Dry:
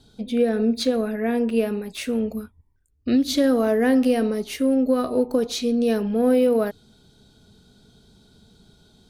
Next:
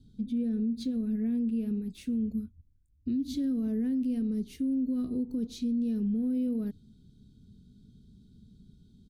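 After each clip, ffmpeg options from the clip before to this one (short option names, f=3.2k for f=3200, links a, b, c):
-af "firequalizer=gain_entry='entry(230,0);entry(600,-28);entry(3400,-17)':delay=0.05:min_phase=1,alimiter=level_in=0.5dB:limit=-24dB:level=0:latency=1:release=137,volume=-0.5dB"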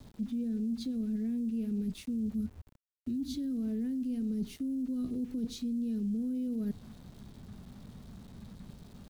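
-filter_complex "[0:a]areverse,acompressor=threshold=-38dB:ratio=6,areverse,aeval=exprs='val(0)*gte(abs(val(0)),0.00106)':c=same,acrossover=split=250|3000[a][b][c];[b]acompressor=threshold=-46dB:ratio=6[d];[a][d][c]amix=inputs=3:normalize=0,volume=7dB"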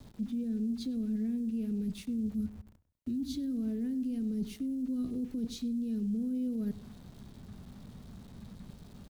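-filter_complex "[0:a]asplit=2[a][b];[b]adelay=99,lowpass=f=2.1k:p=1,volume=-16dB,asplit=2[c][d];[d]adelay=99,lowpass=f=2.1k:p=1,volume=0.37,asplit=2[e][f];[f]adelay=99,lowpass=f=2.1k:p=1,volume=0.37[g];[a][c][e][g]amix=inputs=4:normalize=0"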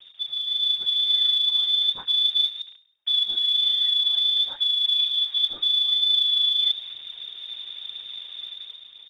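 -af "lowpass=f=3.1k:t=q:w=0.5098,lowpass=f=3.1k:t=q:w=0.6013,lowpass=f=3.1k:t=q:w=0.9,lowpass=f=3.1k:t=q:w=2.563,afreqshift=-3700,aphaser=in_gain=1:out_gain=1:delay=3.9:decay=0.31:speed=1:type=triangular,dynaudnorm=f=110:g=11:m=8dB,volume=3dB"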